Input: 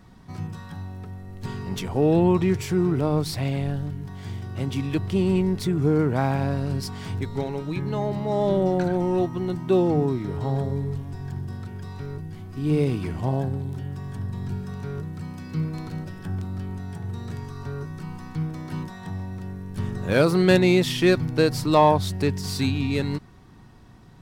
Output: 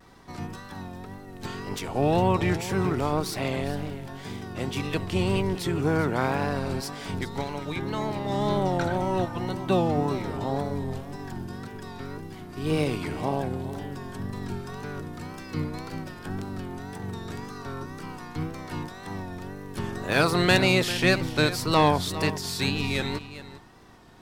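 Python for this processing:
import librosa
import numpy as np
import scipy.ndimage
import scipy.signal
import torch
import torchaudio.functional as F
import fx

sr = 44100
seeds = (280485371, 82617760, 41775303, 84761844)

y = fx.spec_clip(x, sr, under_db=14)
y = y + 10.0 ** (-14.0 / 20.0) * np.pad(y, (int(402 * sr / 1000.0), 0))[:len(y)]
y = fx.vibrato(y, sr, rate_hz=1.9, depth_cents=78.0)
y = F.gain(torch.from_numpy(y), -3.0).numpy()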